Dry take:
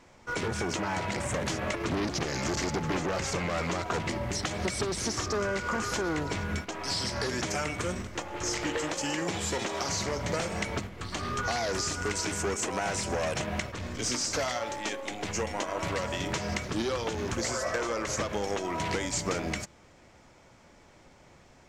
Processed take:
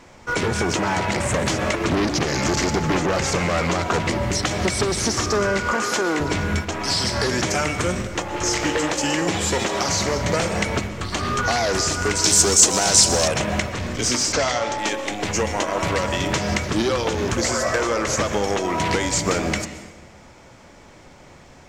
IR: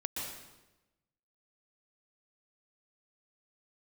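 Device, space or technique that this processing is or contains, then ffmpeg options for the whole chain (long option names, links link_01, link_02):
saturated reverb return: -filter_complex "[0:a]asplit=2[link_01][link_02];[1:a]atrim=start_sample=2205[link_03];[link_02][link_03]afir=irnorm=-1:irlink=0,asoftclip=type=tanh:threshold=-23dB,volume=-9.5dB[link_04];[link_01][link_04]amix=inputs=2:normalize=0,asettb=1/sr,asplit=3[link_05][link_06][link_07];[link_05]atrim=end=5.724[link_08];[link_06]atrim=start=5.72:end=6.2,asetpts=PTS-STARTPTS,afade=type=in:duration=0.004:curve=qsin,afade=type=out:start_time=0.476:duration=0.004:curve=qsin,highpass=250[link_09];[link_07]atrim=start=6.196[link_10];[link_08][link_09]acrossfade=duration=0.004:curve1=hsin:curve2=qsin[link_11];[link_11][link_10]acrossfade=duration=0.004:curve1=qsin:curve2=hsin,asettb=1/sr,asplit=3[link_12][link_13][link_14];[link_12]atrim=end=12.244[link_15];[link_13]atrim=start=12.24:end=13.28,asetpts=PTS-STARTPTS,afade=type=in:duration=0.004:curve=qsin,afade=type=out:start_time=1.036:duration=0.004:curve=qsin,highshelf=frequency=3200:width_type=q:width=1.5:gain=10.5[link_16];[link_14]atrim=start=13.276[link_17];[link_15][link_16]acrossfade=duration=0.004:curve1=hsin:curve2=qsin[link_18];[link_18][link_17]acrossfade=duration=0.004:curve1=qsin:curve2=hsin,asplit=3[link_19][link_20][link_21];[link_19]afade=type=out:start_time=14.32:duration=0.02[link_22];[link_20]lowpass=frequency=8100:width=0.5412,lowpass=frequency=8100:width=1.3066,afade=type=in:start_time=14.32:duration=0.02,afade=type=out:start_time=14.77:duration=0.02[link_23];[link_21]afade=type=in:start_time=14.77:duration=0.02[link_24];[link_22][link_23][link_24]amix=inputs=3:normalize=0,volume=7.5dB"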